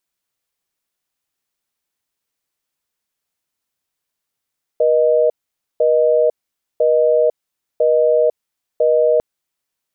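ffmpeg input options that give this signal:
ffmpeg -f lavfi -i "aevalsrc='0.211*(sin(2*PI*480*t)+sin(2*PI*620*t))*clip(min(mod(t,1),0.5-mod(t,1))/0.005,0,1)':duration=4.4:sample_rate=44100" out.wav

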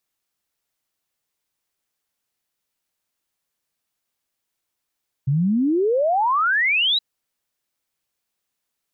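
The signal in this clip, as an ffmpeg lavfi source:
ffmpeg -f lavfi -i "aevalsrc='0.158*clip(min(t,1.72-t)/0.01,0,1)*sin(2*PI*130*1.72/log(4000/130)*(exp(log(4000/130)*t/1.72)-1))':duration=1.72:sample_rate=44100" out.wav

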